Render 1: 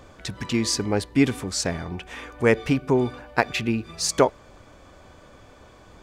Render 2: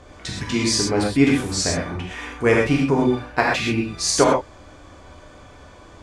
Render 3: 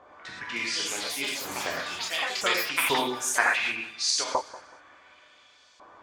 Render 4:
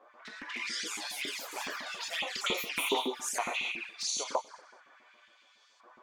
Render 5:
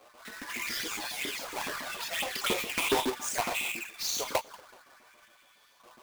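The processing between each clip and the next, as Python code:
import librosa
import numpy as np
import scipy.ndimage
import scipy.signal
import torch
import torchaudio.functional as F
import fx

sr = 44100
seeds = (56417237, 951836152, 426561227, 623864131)

y1 = scipy.signal.sosfilt(scipy.signal.butter(4, 11000.0, 'lowpass', fs=sr, output='sos'), x)
y1 = fx.rev_gated(y1, sr, seeds[0], gate_ms=150, shape='flat', drr_db=-3.0)
y2 = fx.filter_lfo_bandpass(y1, sr, shape='saw_up', hz=0.69, low_hz=900.0, high_hz=5200.0, q=1.5)
y2 = fx.echo_pitch(y2, sr, ms=386, semitones=6, count=3, db_per_echo=-3.0)
y2 = fx.echo_feedback(y2, sr, ms=188, feedback_pct=31, wet_db=-17.5)
y3 = fx.filter_lfo_highpass(y2, sr, shape='saw_up', hz=7.2, low_hz=200.0, high_hz=2500.0, q=1.4)
y3 = fx.env_flanger(y3, sr, rest_ms=10.1, full_db=-24.0)
y3 = fx.low_shelf_res(y3, sr, hz=160.0, db=-8.5, q=1.5)
y3 = y3 * librosa.db_to_amplitude(-4.0)
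y4 = fx.halfwave_hold(y3, sr)
y4 = y4 * librosa.db_to_amplitude(-1.5)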